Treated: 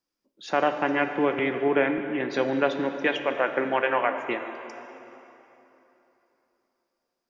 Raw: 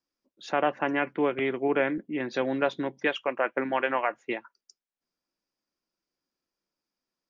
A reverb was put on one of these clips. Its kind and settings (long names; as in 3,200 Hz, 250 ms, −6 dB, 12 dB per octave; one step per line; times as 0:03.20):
dense smooth reverb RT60 3.3 s, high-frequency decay 0.8×, DRR 6.5 dB
level +2 dB